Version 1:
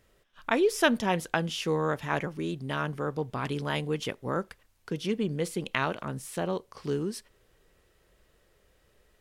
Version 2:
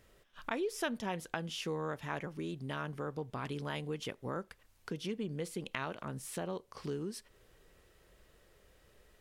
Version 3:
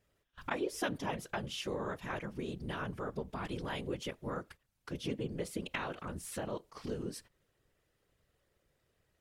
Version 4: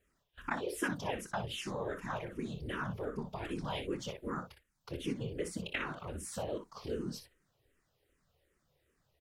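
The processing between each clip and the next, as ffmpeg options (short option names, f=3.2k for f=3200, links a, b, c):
-af "acompressor=threshold=-44dB:ratio=2,volume=1dB"
-af "afftfilt=real='hypot(re,im)*cos(2*PI*random(0))':imag='hypot(re,im)*sin(2*PI*random(1))':win_size=512:overlap=0.75,agate=range=-12dB:threshold=-60dB:ratio=16:detection=peak,volume=6dB"
-filter_complex "[0:a]aecho=1:1:26|60:0.237|0.355,asplit=2[a][b];[b]afreqshift=-2.6[c];[a][c]amix=inputs=2:normalize=1,volume=2.5dB"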